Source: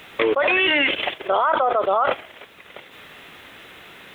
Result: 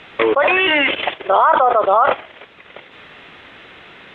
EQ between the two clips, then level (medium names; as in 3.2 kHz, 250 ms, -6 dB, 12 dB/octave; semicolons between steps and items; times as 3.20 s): dynamic bell 950 Hz, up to +5 dB, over -31 dBFS, Q 1.3; low-pass 3.8 kHz 12 dB/octave; +3.0 dB